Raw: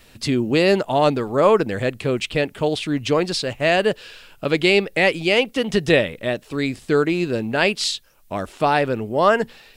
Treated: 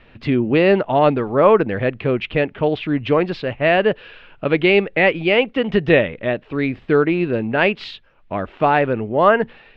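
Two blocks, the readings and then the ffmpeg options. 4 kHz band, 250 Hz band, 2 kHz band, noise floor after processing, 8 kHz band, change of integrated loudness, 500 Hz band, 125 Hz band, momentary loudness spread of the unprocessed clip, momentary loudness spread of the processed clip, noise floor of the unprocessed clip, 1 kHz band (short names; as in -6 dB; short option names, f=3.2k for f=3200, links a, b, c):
-4.0 dB, +2.5 dB, +2.0 dB, -49 dBFS, under -25 dB, +2.0 dB, +2.5 dB, +2.5 dB, 8 LU, 8 LU, -50 dBFS, +2.5 dB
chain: -af "lowpass=f=2.8k:w=0.5412,lowpass=f=2.8k:w=1.3066,volume=2.5dB"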